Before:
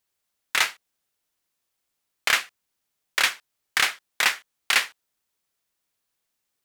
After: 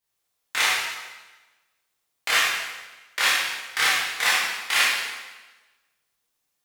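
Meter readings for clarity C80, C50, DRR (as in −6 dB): 1.5 dB, −1.5 dB, −9.0 dB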